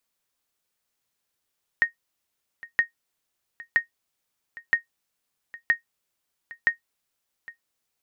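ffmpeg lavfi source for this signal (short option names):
-f lavfi -i "aevalsrc='0.299*(sin(2*PI*1860*mod(t,0.97))*exp(-6.91*mod(t,0.97)/0.12)+0.0944*sin(2*PI*1860*max(mod(t,0.97)-0.81,0))*exp(-6.91*max(mod(t,0.97)-0.81,0)/0.12))':d=5.82:s=44100"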